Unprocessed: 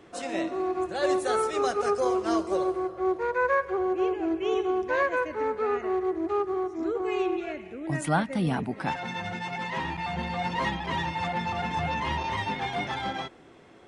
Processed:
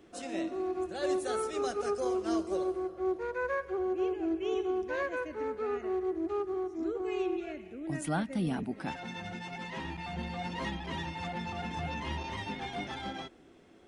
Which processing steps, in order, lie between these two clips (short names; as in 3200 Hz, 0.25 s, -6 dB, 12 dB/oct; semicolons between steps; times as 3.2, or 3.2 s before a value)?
ten-band EQ 125 Hz -9 dB, 500 Hz -5 dB, 1000 Hz -9 dB, 2000 Hz -6 dB, 4000 Hz -4 dB, 8000 Hz -4 dB